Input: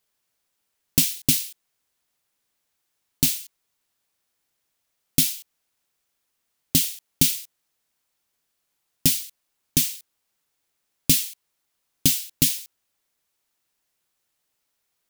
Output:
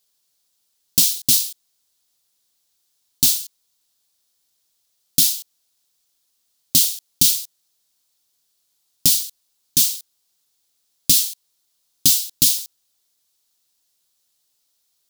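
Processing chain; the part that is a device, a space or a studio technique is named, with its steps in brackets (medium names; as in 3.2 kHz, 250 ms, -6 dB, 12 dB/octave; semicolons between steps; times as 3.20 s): over-bright horn tweeter (resonant high shelf 3 kHz +8.5 dB, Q 1.5; peak limiter -0.5 dBFS, peak gain reduction 5.5 dB); trim -1 dB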